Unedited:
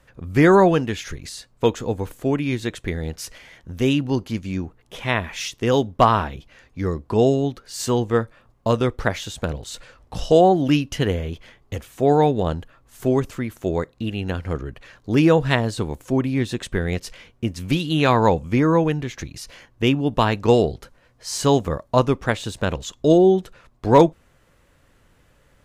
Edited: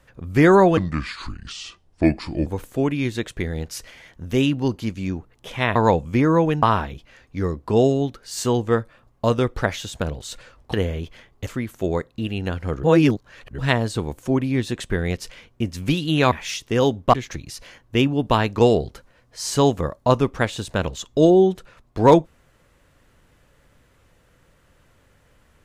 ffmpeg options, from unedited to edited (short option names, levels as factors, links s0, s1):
-filter_complex "[0:a]asplit=11[s0][s1][s2][s3][s4][s5][s6][s7][s8][s9][s10];[s0]atrim=end=0.774[s11];[s1]atrim=start=0.77:end=1.94,asetpts=PTS-STARTPTS,asetrate=30429,aresample=44100,atrim=end_sample=74778,asetpts=PTS-STARTPTS[s12];[s2]atrim=start=1.936:end=5.232[s13];[s3]atrim=start=18.138:end=19.012[s14];[s4]atrim=start=6.048:end=10.162[s15];[s5]atrim=start=11.028:end=11.762[s16];[s6]atrim=start=13.288:end=14.662[s17];[s7]atrim=start=14.658:end=15.412,asetpts=PTS-STARTPTS,areverse[s18];[s8]atrim=start=15.408:end=18.142[s19];[s9]atrim=start=5.228:end=6.052[s20];[s10]atrim=start=19.008[s21];[s11][s12]acrossfade=d=0.004:c1=hsin:c2=hsin[s22];[s22][s13]acrossfade=d=0.004:c1=hsin:c2=hsin[s23];[s23][s14]acrossfade=d=0.004:c1=hsin:c2=hsin[s24];[s24][s15]acrossfade=d=0.004:c1=hsin:c2=hsin[s25];[s25][s16]acrossfade=d=0.004:c1=hsin:c2=hsin[s26];[s26][s17]acrossfade=d=0.004:c1=hsin:c2=hsin[s27];[s27][s18]acrossfade=d=0.004:c1=hsin:c2=hsin[s28];[s28][s19]acrossfade=d=0.004:c1=hsin:c2=hsin[s29];[s29][s20]acrossfade=d=0.004:c1=hsin:c2=hsin[s30];[s30][s21]acrossfade=d=0.004:c1=hsin:c2=hsin"